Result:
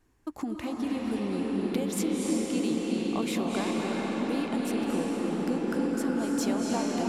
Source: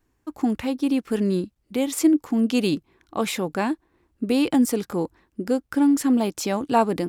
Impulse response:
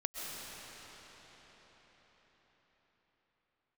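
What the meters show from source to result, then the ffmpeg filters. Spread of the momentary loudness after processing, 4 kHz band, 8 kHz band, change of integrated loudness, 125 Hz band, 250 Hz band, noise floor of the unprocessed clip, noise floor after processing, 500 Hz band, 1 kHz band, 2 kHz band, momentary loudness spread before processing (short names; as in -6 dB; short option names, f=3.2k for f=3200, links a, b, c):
4 LU, -5.0 dB, -4.5 dB, -6.5 dB, -4.5 dB, -6.0 dB, -70 dBFS, -42 dBFS, -6.0 dB, -7.5 dB, -4.0 dB, 10 LU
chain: -filter_complex "[0:a]acompressor=threshold=-33dB:ratio=6[a];[1:a]atrim=start_sample=2205,asetrate=23814,aresample=44100[b];[a][b]afir=irnorm=-1:irlink=0"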